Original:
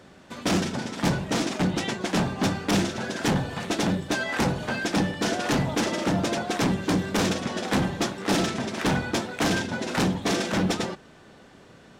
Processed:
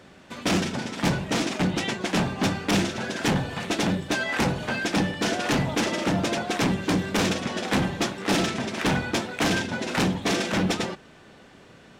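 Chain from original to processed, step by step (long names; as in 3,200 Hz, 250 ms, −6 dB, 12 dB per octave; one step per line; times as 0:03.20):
parametric band 2,500 Hz +3.5 dB 0.94 octaves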